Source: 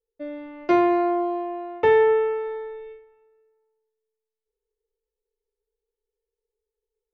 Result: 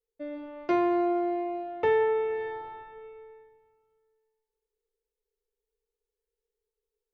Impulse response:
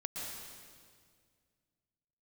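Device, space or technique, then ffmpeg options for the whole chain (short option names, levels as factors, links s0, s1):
ducked reverb: -filter_complex "[0:a]asplit=3[s0][s1][s2];[1:a]atrim=start_sample=2205[s3];[s1][s3]afir=irnorm=-1:irlink=0[s4];[s2]apad=whole_len=314756[s5];[s4][s5]sidechaincompress=threshold=0.0398:ratio=8:attack=16:release=113,volume=0.944[s6];[s0][s6]amix=inputs=2:normalize=0,volume=0.398"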